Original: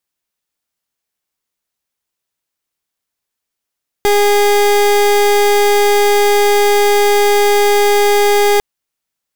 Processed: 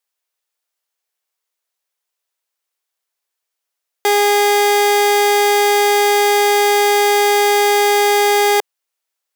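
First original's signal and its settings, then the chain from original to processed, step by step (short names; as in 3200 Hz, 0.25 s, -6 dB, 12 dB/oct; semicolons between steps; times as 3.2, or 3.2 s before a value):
pulse 410 Hz, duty 30% -10.5 dBFS 4.55 s
HPF 420 Hz 24 dB/oct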